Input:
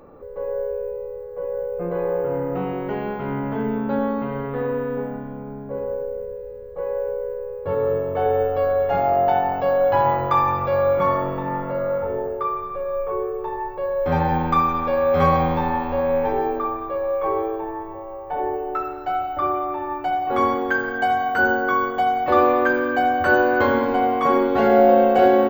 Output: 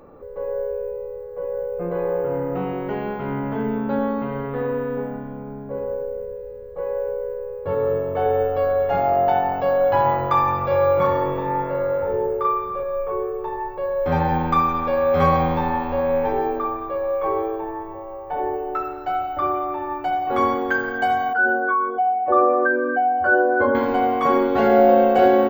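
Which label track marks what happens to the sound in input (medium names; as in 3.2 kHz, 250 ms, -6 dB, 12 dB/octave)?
10.660000	12.830000	doubling 41 ms -2.5 dB
21.330000	23.750000	spectral contrast enhancement exponent 1.8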